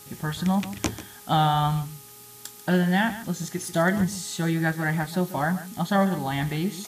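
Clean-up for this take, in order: de-hum 414.5 Hz, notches 3; noise print and reduce 24 dB; inverse comb 0.141 s -14 dB

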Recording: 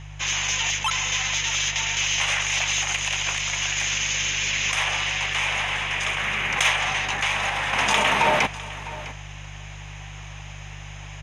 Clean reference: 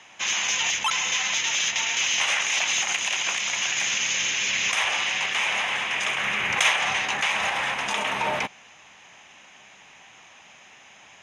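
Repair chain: clip repair -9 dBFS; de-hum 49.6 Hz, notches 3; inverse comb 0.655 s -16.5 dB; gain 0 dB, from 7.73 s -6.5 dB

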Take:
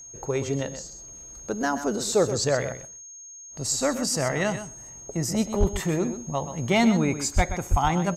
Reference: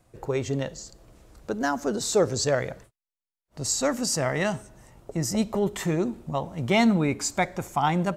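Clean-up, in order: clip repair -11.5 dBFS; notch 6500 Hz, Q 30; de-plosive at 5.59/7.35/7.7; inverse comb 0.127 s -11 dB

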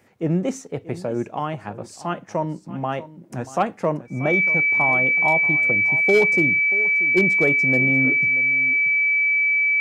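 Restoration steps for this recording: clip repair -9.5 dBFS; notch 2300 Hz, Q 30; inverse comb 0.634 s -16.5 dB

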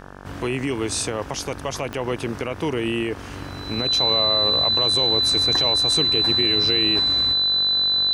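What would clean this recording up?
de-click; de-hum 47.6 Hz, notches 37; notch 4000 Hz, Q 30

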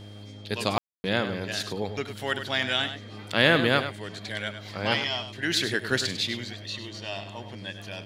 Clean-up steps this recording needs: de-hum 103 Hz, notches 6; notch 3200 Hz, Q 30; room tone fill 0.78–1.04; inverse comb 0.1 s -10 dB

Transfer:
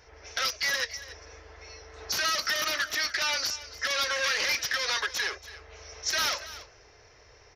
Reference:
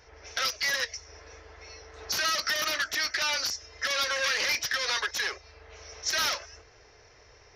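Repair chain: inverse comb 0.283 s -16 dB

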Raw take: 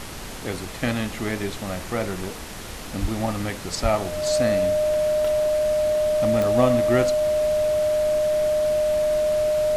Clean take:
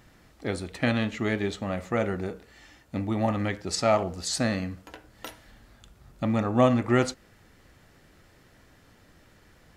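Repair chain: de-click; notch 610 Hz, Q 30; 3.01–3.13 HPF 140 Hz 24 dB/oct; 3.82–3.94 HPF 140 Hz 24 dB/oct; noise print and reduce 23 dB

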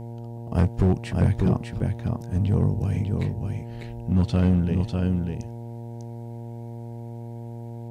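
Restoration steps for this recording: clip repair -13.5 dBFS; de-hum 117 Hz, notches 8; inverse comb 0.597 s -4.5 dB

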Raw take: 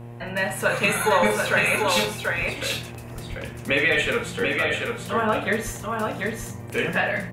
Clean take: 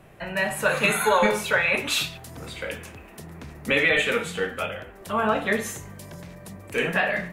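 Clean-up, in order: de-hum 118.4 Hz, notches 9; 2.4–2.52 HPF 140 Hz 24 dB/oct; 3.29–3.41 HPF 140 Hz 24 dB/oct; 5.65–5.77 HPF 140 Hz 24 dB/oct; inverse comb 0.737 s -4 dB

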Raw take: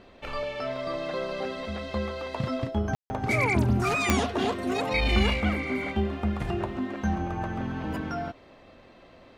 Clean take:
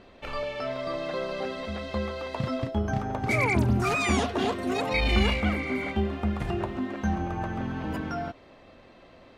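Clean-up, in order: de-click; room tone fill 2.95–3.1

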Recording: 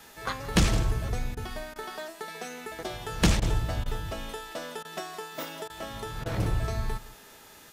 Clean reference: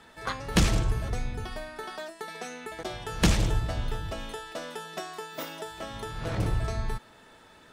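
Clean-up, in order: de-hum 408.5 Hz, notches 18; interpolate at 1.35/1.74/3.4/3.84/4.83/5.68/6.24, 17 ms; noise print and reduce 6 dB; inverse comb 0.167 s -17.5 dB

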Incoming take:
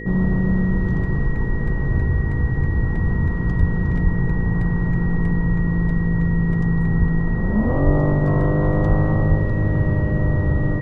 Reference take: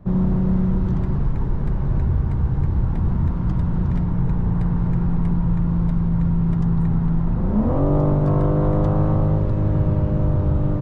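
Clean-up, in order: de-hum 54 Hz, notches 9; notch 1900 Hz, Q 30; de-plosive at 1.94/3.59/4.03/6.99/7.85/8.88/9.28

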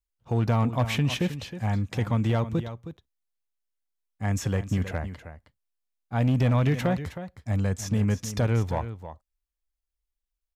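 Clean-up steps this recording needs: clip repair -17.5 dBFS; inverse comb 0.316 s -12 dB

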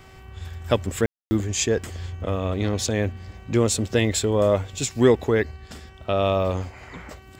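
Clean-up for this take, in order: de-click; de-hum 381.1 Hz, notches 8; room tone fill 1.06–1.31

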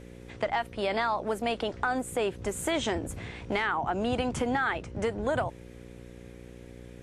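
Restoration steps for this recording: de-hum 60.2 Hz, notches 9

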